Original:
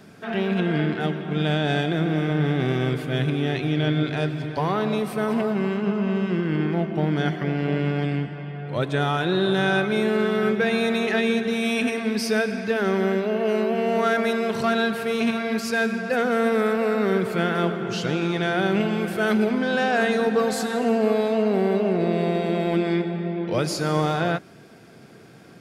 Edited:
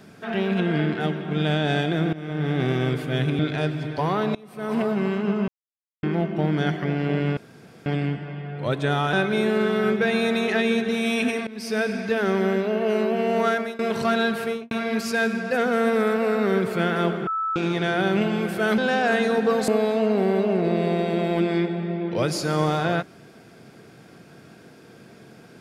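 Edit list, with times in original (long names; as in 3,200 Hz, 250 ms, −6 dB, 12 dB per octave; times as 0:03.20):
0:02.13–0:02.60: fade in, from −17 dB
0:03.39–0:03.98: remove
0:04.94–0:05.36: fade in quadratic, from −23 dB
0:06.07–0:06.62: silence
0:07.96: splice in room tone 0.49 s
0:09.23–0:09.72: remove
0:12.06–0:12.47: fade in, from −21 dB
0:14.07–0:14.38: fade out, to −21.5 dB
0:15.03–0:15.30: fade out and dull
0:17.86–0:18.15: beep over 1,310 Hz −22.5 dBFS
0:19.37–0:19.67: remove
0:20.57–0:21.04: remove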